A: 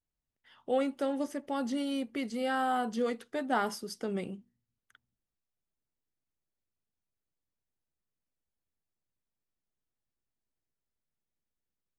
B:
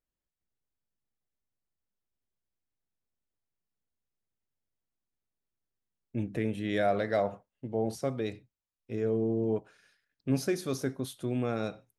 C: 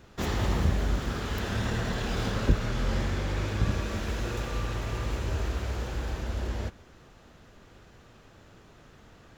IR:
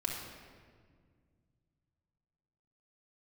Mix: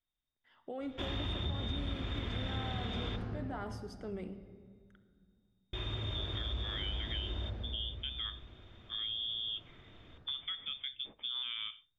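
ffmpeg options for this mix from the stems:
-filter_complex "[0:a]alimiter=level_in=4dB:limit=-24dB:level=0:latency=1:release=31,volume=-4dB,volume=-8dB,asplit=2[a][b];[b]volume=-8.5dB[c];[1:a]volume=0dB[d];[2:a]adelay=800,volume=-7dB,asplit=3[e][f][g];[e]atrim=end=3.16,asetpts=PTS-STARTPTS,afade=t=out:st=3.156:d=0.004:c=hsin[h];[f]atrim=start=3.16:end=5.73,asetpts=PTS-STARTPTS,volume=0[i];[g]atrim=start=5.73,asetpts=PTS-STARTPTS,afade=t=in:d=0.004:c=hsin[j];[h][i][j]concat=n=3:v=0:a=1,asplit=2[k][l];[l]volume=-3dB[m];[d][k]amix=inputs=2:normalize=0,lowpass=f=3.1k:t=q:w=0.5098,lowpass=f=3.1k:t=q:w=0.6013,lowpass=f=3.1k:t=q:w=0.9,lowpass=f=3.1k:t=q:w=2.563,afreqshift=-3700,alimiter=limit=-23dB:level=0:latency=1:release=215,volume=0dB[n];[3:a]atrim=start_sample=2205[o];[c][m]amix=inputs=2:normalize=0[p];[p][o]afir=irnorm=-1:irlink=0[q];[a][n][q]amix=inputs=3:normalize=0,aemphasis=mode=reproduction:type=75fm,acompressor=threshold=-35dB:ratio=3"

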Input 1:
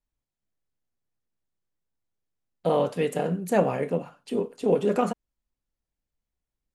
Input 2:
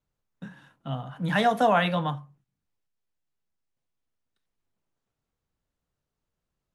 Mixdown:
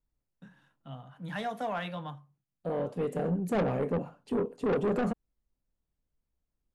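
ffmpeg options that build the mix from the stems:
-filter_complex "[0:a]tiltshelf=f=970:g=7,volume=-3.5dB[a];[1:a]volume=-11.5dB,asplit=2[b][c];[c]apad=whole_len=297249[d];[a][d]sidechaincompress=threshold=-48dB:ratio=10:attack=29:release=1200[e];[e][b]amix=inputs=2:normalize=0,asoftclip=type=tanh:threshold=-24dB"

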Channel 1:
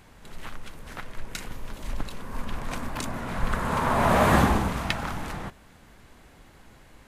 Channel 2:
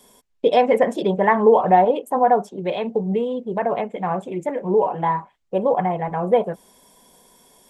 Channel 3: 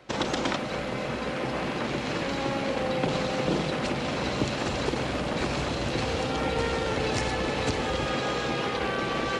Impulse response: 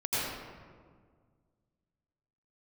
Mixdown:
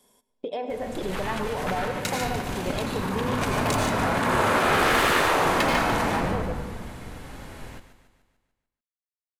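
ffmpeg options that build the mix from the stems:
-filter_complex "[0:a]asoftclip=type=tanh:threshold=-23.5dB,adelay=700,volume=-0.5dB,asplit=3[a][b][c];[b]volume=-3dB[d];[c]volume=-3.5dB[e];[1:a]alimiter=limit=-9.5dB:level=0:latency=1:release=84,volume=-10dB,asplit=2[f][g];[g]volume=-23.5dB[h];[f]acompressor=threshold=-32dB:ratio=6,volume=0dB[i];[3:a]atrim=start_sample=2205[j];[d][h]amix=inputs=2:normalize=0[k];[k][j]afir=irnorm=-1:irlink=0[l];[e]aecho=0:1:147|294|441|588|735|882|1029:1|0.51|0.26|0.133|0.0677|0.0345|0.0176[m];[a][i][l][m]amix=inputs=4:normalize=0,afftfilt=real='re*lt(hypot(re,im),0.355)':imag='im*lt(hypot(re,im),0.355)':win_size=1024:overlap=0.75,dynaudnorm=f=180:g=5:m=3.5dB"

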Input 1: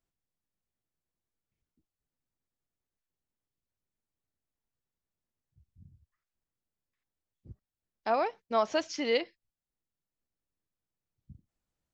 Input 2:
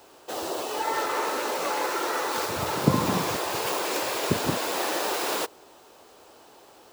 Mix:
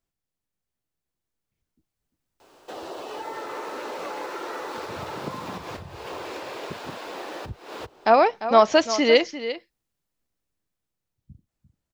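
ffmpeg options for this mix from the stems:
-filter_complex "[0:a]volume=2.5dB,asplit=3[a][b][c];[b]volume=-12dB[d];[1:a]acrossover=split=540|5000[e][f][g];[e]acompressor=threshold=-39dB:ratio=4[h];[f]acompressor=threshold=-37dB:ratio=4[i];[g]acompressor=threshold=-53dB:ratio=4[j];[h][i][j]amix=inputs=3:normalize=0,highshelf=f=7.7k:g=-8,adelay=2400,volume=-9.5dB[k];[c]apad=whole_len=411222[l];[k][l]sidechaincompress=threshold=-60dB:ratio=6:attack=8.4:release=163[m];[d]aecho=0:1:347:1[n];[a][m][n]amix=inputs=3:normalize=0,dynaudnorm=f=250:g=21:m=12dB"

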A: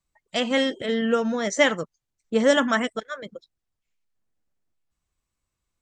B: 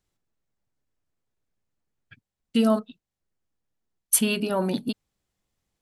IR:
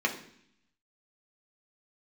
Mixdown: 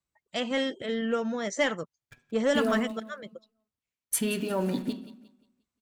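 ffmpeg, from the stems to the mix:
-filter_complex "[0:a]highpass=60,volume=-5.5dB[a];[1:a]acrusher=bits=8:dc=4:mix=0:aa=0.000001,volume=-3.5dB,asplit=3[b][c][d];[c]volume=-14.5dB[e];[d]volume=-17dB[f];[2:a]atrim=start_sample=2205[g];[e][g]afir=irnorm=-1:irlink=0[h];[f]aecho=0:1:177|354|531|708|885:1|0.34|0.116|0.0393|0.0134[i];[a][b][h][i]amix=inputs=4:normalize=0,highshelf=f=7.8k:g=-3.5,asoftclip=type=tanh:threshold=-15.5dB"

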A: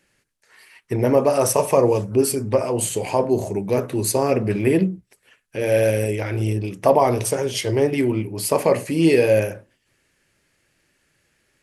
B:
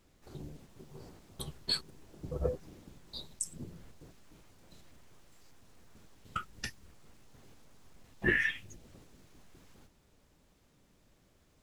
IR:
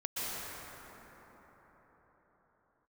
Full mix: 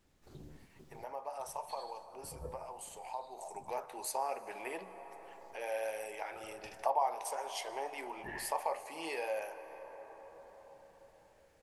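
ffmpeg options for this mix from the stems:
-filter_complex "[0:a]highpass=f=820:t=q:w=4.9,volume=-11dB,afade=t=in:st=3.33:d=0.37:silence=0.281838,asplit=3[a][b][c];[b]volume=-19.5dB[d];[1:a]volume=-5.5dB,asplit=2[e][f];[f]volume=-13dB[g];[c]apad=whole_len=512803[h];[e][h]sidechaincompress=threshold=-43dB:ratio=8:attack=6.4:release=772[i];[2:a]atrim=start_sample=2205[j];[d][j]afir=irnorm=-1:irlink=0[k];[g]aecho=0:1:77|154|231|308|385|462|539:1|0.47|0.221|0.104|0.0488|0.0229|0.0108[l];[a][i][k][l]amix=inputs=4:normalize=0,acompressor=threshold=-48dB:ratio=1.5"

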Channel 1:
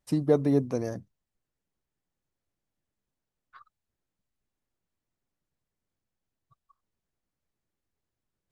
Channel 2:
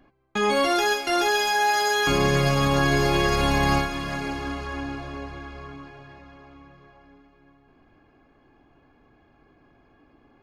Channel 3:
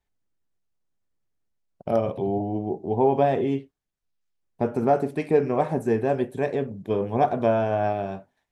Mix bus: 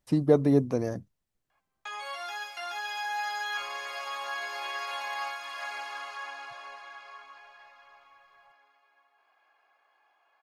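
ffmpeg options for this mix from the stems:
-filter_complex "[0:a]volume=1.5dB[a];[1:a]alimiter=limit=-18dB:level=0:latency=1:release=417,dynaudnorm=f=370:g=9:m=6dB,highpass=f=730:w=0.5412,highpass=f=730:w=1.3066,adelay=1500,volume=-9dB[b];[a][b]amix=inputs=2:normalize=0,acrossover=split=4200[c][d];[d]acompressor=threshold=-50dB:ratio=4:attack=1:release=60[e];[c][e]amix=inputs=2:normalize=0"

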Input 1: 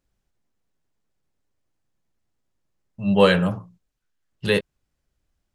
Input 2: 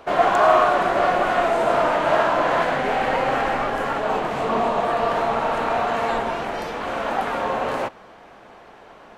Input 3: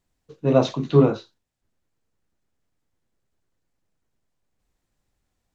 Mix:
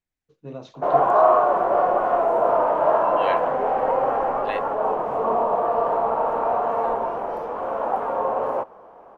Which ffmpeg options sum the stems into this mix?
-filter_complex "[0:a]bandpass=f=2.1k:t=q:w=2.7:csg=0,volume=-5.5dB[a];[1:a]equalizer=f=500:t=o:w=1:g=10,equalizer=f=1k:t=o:w=1:g=10,equalizer=f=2k:t=o:w=1:g=-7,equalizer=f=4k:t=o:w=1:g=-11,equalizer=f=8k:t=o:w=1:g=-10,adelay=750,volume=-9dB[b];[2:a]acompressor=threshold=-16dB:ratio=6,volume=-15dB[c];[a][b][c]amix=inputs=3:normalize=0"

